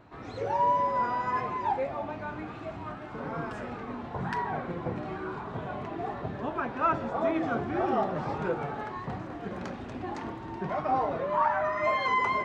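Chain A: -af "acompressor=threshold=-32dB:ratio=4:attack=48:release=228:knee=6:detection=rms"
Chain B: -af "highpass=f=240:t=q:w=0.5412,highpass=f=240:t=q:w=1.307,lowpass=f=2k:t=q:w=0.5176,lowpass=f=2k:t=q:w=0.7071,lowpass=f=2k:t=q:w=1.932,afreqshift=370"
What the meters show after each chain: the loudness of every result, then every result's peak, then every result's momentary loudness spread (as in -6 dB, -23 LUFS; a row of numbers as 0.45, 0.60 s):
-35.5, -31.0 LUFS; -21.5, -14.5 dBFS; 6, 13 LU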